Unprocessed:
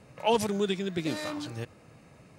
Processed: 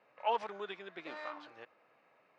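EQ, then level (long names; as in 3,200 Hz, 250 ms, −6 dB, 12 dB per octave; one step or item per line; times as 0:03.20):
dynamic equaliser 1,100 Hz, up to +5 dB, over −43 dBFS, Q 1.2
band-pass filter 660–2,500 Hz
high-frequency loss of the air 56 metres
−6.0 dB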